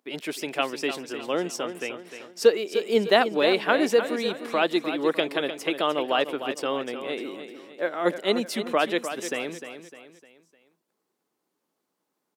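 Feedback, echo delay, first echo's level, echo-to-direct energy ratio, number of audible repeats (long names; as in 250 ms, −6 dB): 42%, 303 ms, −10.0 dB, −9.0 dB, 4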